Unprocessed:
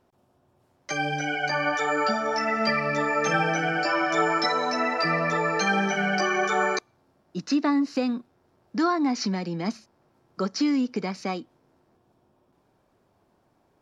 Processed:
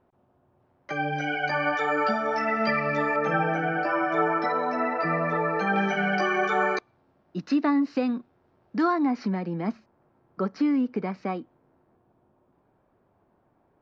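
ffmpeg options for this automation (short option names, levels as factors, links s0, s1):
-af "asetnsamples=n=441:p=0,asendcmd='1.16 lowpass f 3200;3.16 lowpass f 1700;5.76 lowpass f 3100;9.06 lowpass f 1900',lowpass=2000"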